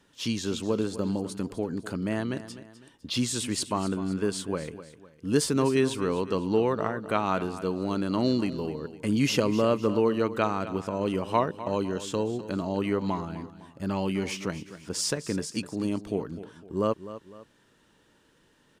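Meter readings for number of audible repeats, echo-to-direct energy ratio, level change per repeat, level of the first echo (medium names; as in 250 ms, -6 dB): 2, -13.5 dB, -8.0 dB, -14.0 dB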